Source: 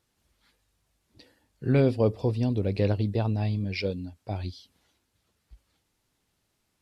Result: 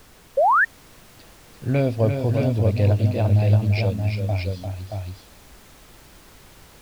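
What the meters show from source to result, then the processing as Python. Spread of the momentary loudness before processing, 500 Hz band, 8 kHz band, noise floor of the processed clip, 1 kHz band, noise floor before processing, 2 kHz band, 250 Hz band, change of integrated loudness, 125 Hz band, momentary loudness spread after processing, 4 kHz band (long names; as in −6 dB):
13 LU, +4.5 dB, can't be measured, −50 dBFS, +17.5 dB, −76 dBFS, +15.5 dB, +2.0 dB, +6.0 dB, +8.5 dB, 14 LU, +3.5 dB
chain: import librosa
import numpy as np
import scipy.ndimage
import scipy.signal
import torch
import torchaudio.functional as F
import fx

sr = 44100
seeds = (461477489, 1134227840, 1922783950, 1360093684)

y = fx.graphic_eq_31(x, sr, hz=(100, 400, 630, 2500), db=(10, -5, 10, 5))
y = fx.dmg_noise_colour(y, sr, seeds[0], colour='pink', level_db=-50.0)
y = fx.echo_multitap(y, sr, ms=(346, 388, 626), db=(-6.5, -18.0, -5.0))
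y = fx.spec_paint(y, sr, seeds[1], shape='rise', start_s=0.37, length_s=0.28, low_hz=510.0, high_hz=1900.0, level_db=-16.0)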